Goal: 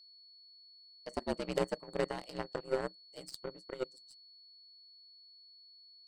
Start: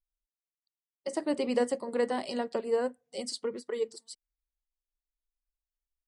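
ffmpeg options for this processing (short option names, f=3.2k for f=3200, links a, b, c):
-af "aeval=exprs='val(0)*sin(2*PI*66*n/s)':c=same,aeval=exprs='0.178*(cos(1*acos(clip(val(0)/0.178,-1,1)))-cos(1*PI/2))+0.0398*(cos(3*acos(clip(val(0)/0.178,-1,1)))-cos(3*PI/2))+0.0398*(cos(5*acos(clip(val(0)/0.178,-1,1)))-cos(5*PI/2))+0.00398*(cos(6*acos(clip(val(0)/0.178,-1,1)))-cos(6*PI/2))+0.0316*(cos(7*acos(clip(val(0)/0.178,-1,1)))-cos(7*PI/2))':c=same,aeval=exprs='val(0)+0.00158*sin(2*PI*4400*n/s)':c=same"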